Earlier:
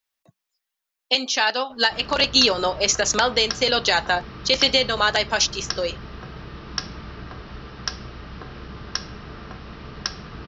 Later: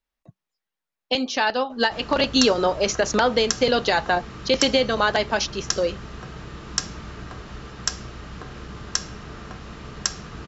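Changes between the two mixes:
speech: add tilt EQ -3 dB/octave; background: remove steep low-pass 5.6 kHz 96 dB/octave

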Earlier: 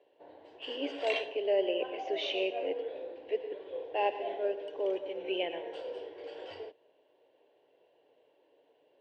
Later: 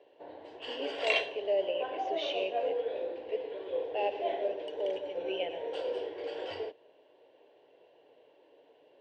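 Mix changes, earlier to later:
speech: add static phaser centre 330 Hz, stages 6; background +6.0 dB

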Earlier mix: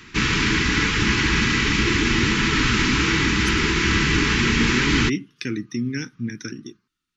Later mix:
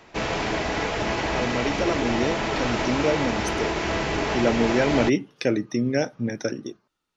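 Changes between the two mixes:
background -9.5 dB; master: remove Butterworth band-stop 640 Hz, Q 0.63

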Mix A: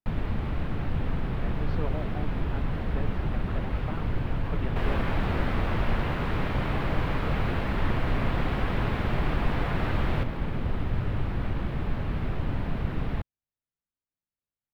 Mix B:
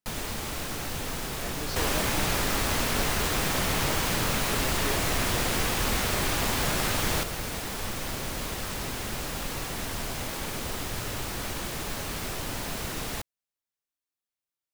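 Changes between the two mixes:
first sound: add tone controls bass -10 dB, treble +2 dB; second sound: entry -3.00 s; master: remove distance through air 490 m

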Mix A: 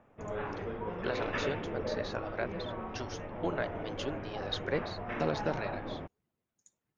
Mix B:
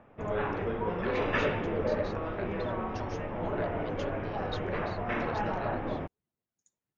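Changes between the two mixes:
speech -6.5 dB; background +6.0 dB

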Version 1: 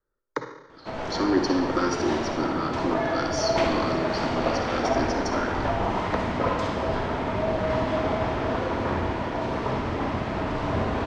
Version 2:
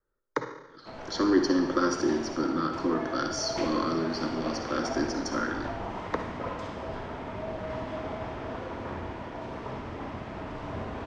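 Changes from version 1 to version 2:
background -10.0 dB; master: add peaking EQ 4.2 kHz -2.5 dB 0.32 oct

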